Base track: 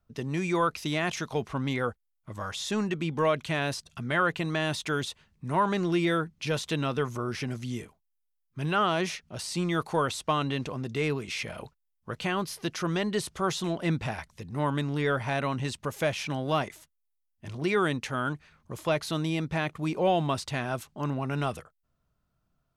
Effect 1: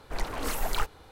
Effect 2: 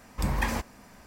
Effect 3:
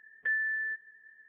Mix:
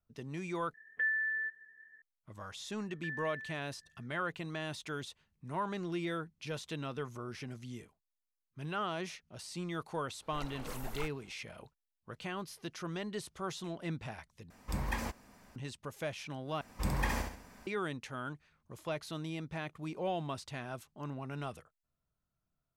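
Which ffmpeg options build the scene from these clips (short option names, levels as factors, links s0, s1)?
-filter_complex "[3:a]asplit=2[s0][s1];[2:a]asplit=2[s2][s3];[0:a]volume=0.282[s4];[s1]lowpass=1900[s5];[s3]aecho=1:1:67|134|201|268|335:0.562|0.214|0.0812|0.0309|0.0117[s6];[s4]asplit=4[s7][s8][s9][s10];[s7]atrim=end=0.744[s11];[s0]atrim=end=1.28,asetpts=PTS-STARTPTS,volume=0.794[s12];[s8]atrim=start=2.016:end=14.504[s13];[s2]atrim=end=1.06,asetpts=PTS-STARTPTS,volume=0.398[s14];[s9]atrim=start=15.556:end=16.614[s15];[s6]atrim=end=1.06,asetpts=PTS-STARTPTS,volume=0.501[s16];[s10]atrim=start=17.666[s17];[s5]atrim=end=1.28,asetpts=PTS-STARTPTS,volume=0.316,afade=t=in:d=0.004:c=hsin,afade=t=out:st=1.276:d=0.004:c=hsin,adelay=2780[s18];[1:a]atrim=end=1.11,asetpts=PTS-STARTPTS,volume=0.224,afade=t=in:d=0.004:c=hsin,afade=t=out:st=1.106:d=0.004:c=hsin,adelay=10220[s19];[s11][s12]acrossfade=d=0.004:c1=hsin:c2=hsin[s20];[s20][s13]acrossfade=d=0.004:c1=hsin:c2=hsin[s21];[s21][s14]acrossfade=d=0.004:c1=hsin:c2=hsin[s22];[s22][s15]acrossfade=d=0.004:c1=hsin:c2=hsin[s23];[s23][s16]acrossfade=d=0.004:c1=hsin:c2=hsin[s24];[s24][s17]acrossfade=d=0.004:c1=hsin:c2=hsin[s25];[s25][s18][s19]amix=inputs=3:normalize=0"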